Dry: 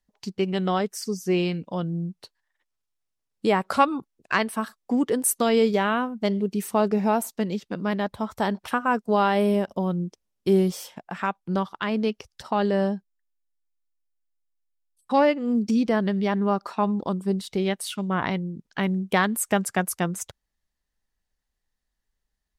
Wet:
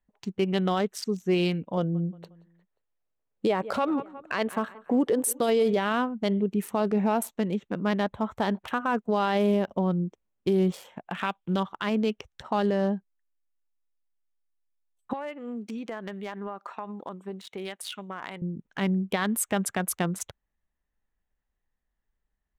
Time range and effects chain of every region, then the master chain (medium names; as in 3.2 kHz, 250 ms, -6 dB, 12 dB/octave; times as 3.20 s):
1.77–5.77 s: peaking EQ 530 Hz +7.5 dB 0.95 oct + feedback delay 178 ms, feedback 48%, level -22.5 dB
11.06–11.60 s: block-companded coder 7-bit + peaking EQ 3.2 kHz +11 dB 0.67 oct
15.13–18.42 s: high-pass 930 Hz 6 dB/octave + compression 12:1, threshold -30 dBFS
whole clip: local Wiener filter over 9 samples; dynamic bell 3.6 kHz, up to +4 dB, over -46 dBFS, Q 1.3; peak limiter -16.5 dBFS